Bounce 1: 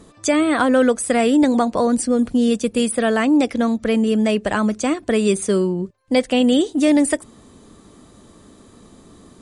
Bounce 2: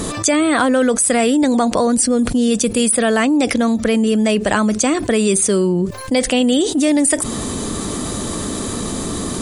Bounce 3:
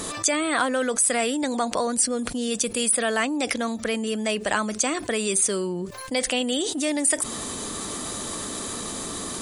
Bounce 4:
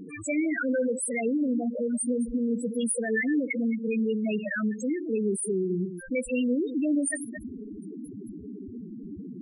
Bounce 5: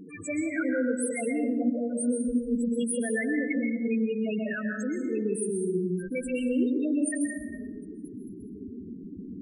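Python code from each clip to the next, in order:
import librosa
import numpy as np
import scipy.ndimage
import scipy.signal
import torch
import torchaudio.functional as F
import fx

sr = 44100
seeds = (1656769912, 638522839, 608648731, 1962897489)

y1 = fx.high_shelf(x, sr, hz=4900.0, db=8.5)
y1 = fx.env_flatten(y1, sr, amount_pct=70)
y1 = y1 * librosa.db_to_amplitude(-1.0)
y2 = fx.low_shelf(y1, sr, hz=420.0, db=-11.5)
y2 = y2 * librosa.db_to_amplitude(-4.5)
y3 = fx.reverse_delay(y2, sr, ms=125, wet_db=-8.5)
y3 = fx.fixed_phaser(y3, sr, hz=2300.0, stages=4)
y3 = fx.spec_topn(y3, sr, count=4)
y3 = y3 * librosa.db_to_amplitude(2.5)
y4 = fx.rev_plate(y3, sr, seeds[0], rt60_s=1.0, hf_ratio=0.5, predelay_ms=115, drr_db=2.5)
y4 = y4 * librosa.db_to_amplitude(-3.5)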